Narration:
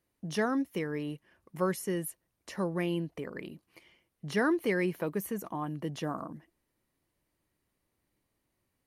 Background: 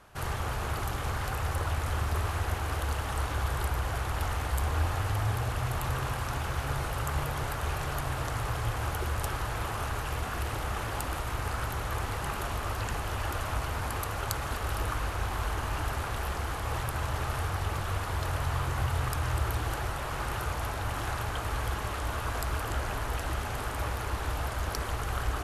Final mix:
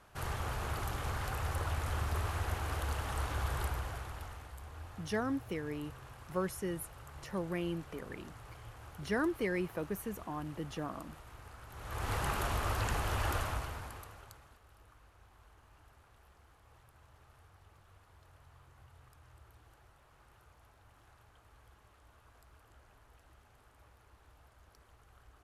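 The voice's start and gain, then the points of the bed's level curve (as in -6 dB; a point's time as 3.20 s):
4.75 s, -5.0 dB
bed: 3.64 s -5 dB
4.56 s -19.5 dB
11.66 s -19.5 dB
12.12 s -1 dB
13.36 s -1 dB
14.63 s -30 dB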